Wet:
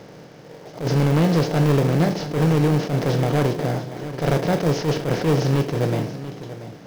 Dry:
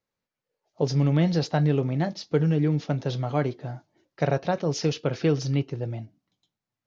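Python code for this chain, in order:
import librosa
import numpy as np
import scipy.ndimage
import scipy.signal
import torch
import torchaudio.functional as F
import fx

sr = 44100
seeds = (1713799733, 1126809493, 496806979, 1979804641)

p1 = fx.bin_compress(x, sr, power=0.4)
p2 = fx.lowpass(p1, sr, hz=4000.0, slope=6)
p3 = fx.sample_hold(p2, sr, seeds[0], rate_hz=1400.0, jitter_pct=0)
p4 = p2 + (p3 * librosa.db_to_amplitude(-8.0))
p5 = np.clip(p4, -10.0 ** (-12.0 / 20.0), 10.0 ** (-12.0 / 20.0))
p6 = p5 + fx.echo_single(p5, sr, ms=686, db=-13.5, dry=0)
y = fx.attack_slew(p6, sr, db_per_s=160.0)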